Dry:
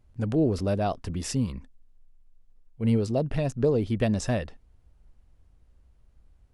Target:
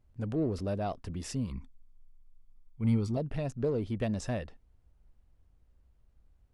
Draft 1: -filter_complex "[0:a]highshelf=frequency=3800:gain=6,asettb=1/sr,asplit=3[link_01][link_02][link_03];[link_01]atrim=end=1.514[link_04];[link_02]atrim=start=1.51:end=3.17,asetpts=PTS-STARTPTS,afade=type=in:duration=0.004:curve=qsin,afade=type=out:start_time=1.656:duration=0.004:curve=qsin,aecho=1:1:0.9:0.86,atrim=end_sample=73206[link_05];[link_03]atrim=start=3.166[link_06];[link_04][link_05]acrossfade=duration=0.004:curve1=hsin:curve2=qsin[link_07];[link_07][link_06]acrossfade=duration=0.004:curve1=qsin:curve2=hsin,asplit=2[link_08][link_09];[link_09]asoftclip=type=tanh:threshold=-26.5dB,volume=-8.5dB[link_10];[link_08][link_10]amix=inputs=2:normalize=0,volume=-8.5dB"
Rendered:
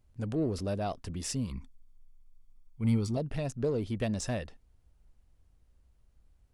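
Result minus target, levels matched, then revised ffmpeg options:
8,000 Hz band +6.5 dB
-filter_complex "[0:a]highshelf=frequency=3800:gain=-3,asettb=1/sr,asplit=3[link_01][link_02][link_03];[link_01]atrim=end=1.514[link_04];[link_02]atrim=start=1.51:end=3.17,asetpts=PTS-STARTPTS,afade=type=in:duration=0.004:curve=qsin,afade=type=out:start_time=1.656:duration=0.004:curve=qsin,aecho=1:1:0.9:0.86,atrim=end_sample=73206[link_05];[link_03]atrim=start=3.166[link_06];[link_04][link_05]acrossfade=duration=0.004:curve1=hsin:curve2=qsin[link_07];[link_07][link_06]acrossfade=duration=0.004:curve1=qsin:curve2=hsin,asplit=2[link_08][link_09];[link_09]asoftclip=type=tanh:threshold=-26.5dB,volume=-8.5dB[link_10];[link_08][link_10]amix=inputs=2:normalize=0,volume=-8.5dB"

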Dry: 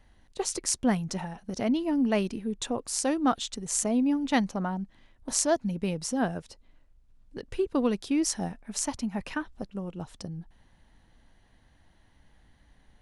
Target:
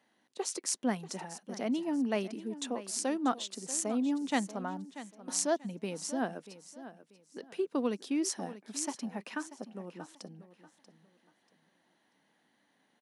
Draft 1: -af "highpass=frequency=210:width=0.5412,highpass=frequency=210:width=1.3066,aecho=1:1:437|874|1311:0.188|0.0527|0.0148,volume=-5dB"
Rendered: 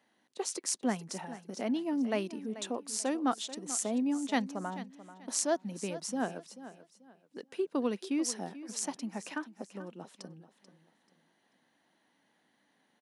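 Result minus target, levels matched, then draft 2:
echo 200 ms early
-af "highpass=frequency=210:width=0.5412,highpass=frequency=210:width=1.3066,aecho=1:1:637|1274|1911:0.188|0.0527|0.0148,volume=-5dB"

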